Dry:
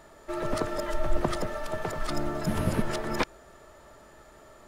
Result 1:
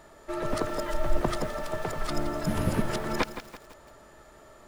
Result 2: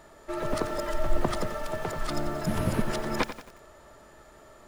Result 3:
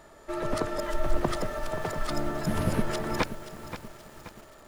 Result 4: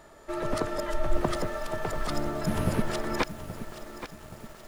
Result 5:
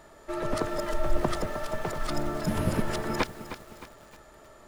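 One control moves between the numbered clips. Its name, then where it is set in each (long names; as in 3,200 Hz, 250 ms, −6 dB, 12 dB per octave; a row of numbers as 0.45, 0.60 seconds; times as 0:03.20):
feedback echo at a low word length, delay time: 167, 90, 528, 825, 310 milliseconds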